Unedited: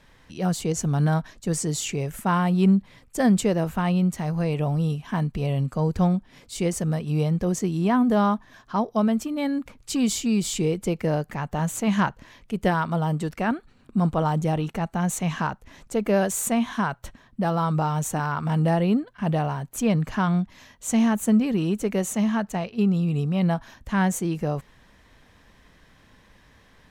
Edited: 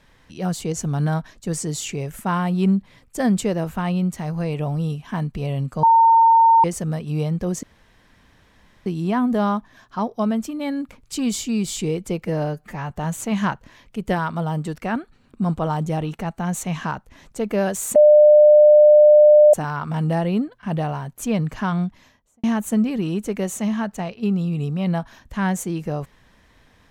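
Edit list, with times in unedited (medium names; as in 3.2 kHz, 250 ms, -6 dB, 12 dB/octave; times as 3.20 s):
5.83–6.64 s: bleep 911 Hz -9.5 dBFS
7.63 s: insert room tone 1.23 s
11.03–11.46 s: stretch 1.5×
16.51–18.09 s: bleep 600 Hz -7 dBFS
20.42–20.99 s: studio fade out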